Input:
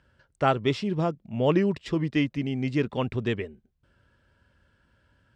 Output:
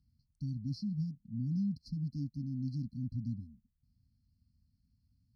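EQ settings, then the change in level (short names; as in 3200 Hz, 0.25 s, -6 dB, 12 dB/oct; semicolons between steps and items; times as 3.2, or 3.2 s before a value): brick-wall FIR band-stop 280–4100 Hz; fixed phaser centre 2200 Hz, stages 6; -5.5 dB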